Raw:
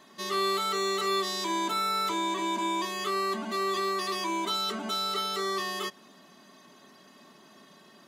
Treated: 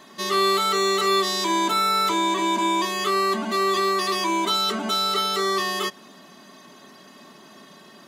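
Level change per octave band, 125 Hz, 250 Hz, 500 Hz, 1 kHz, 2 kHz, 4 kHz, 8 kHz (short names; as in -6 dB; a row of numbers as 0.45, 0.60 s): n/a, +7.5 dB, +7.5 dB, +7.5 dB, +7.5 dB, +7.5 dB, +7.5 dB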